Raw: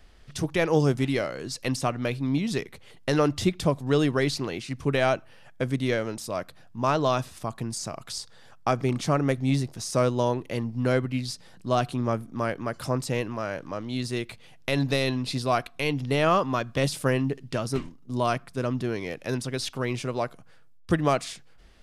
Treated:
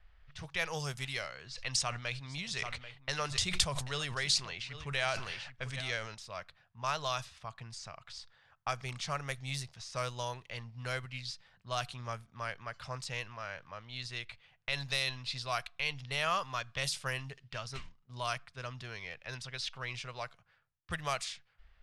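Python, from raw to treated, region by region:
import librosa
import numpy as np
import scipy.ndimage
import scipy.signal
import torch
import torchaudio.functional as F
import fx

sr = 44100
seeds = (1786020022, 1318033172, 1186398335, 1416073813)

y = fx.chain(x, sr, fx.lowpass(hz=9800.0, slope=24),
    fx.echo_single(ms=788, db=-16.5),
    fx.sustainer(db_per_s=43.0), at=(1.42, 6.15))
y = fx.env_lowpass(y, sr, base_hz=1700.0, full_db=-18.5)
y = fx.tone_stack(y, sr, knobs='10-0-10')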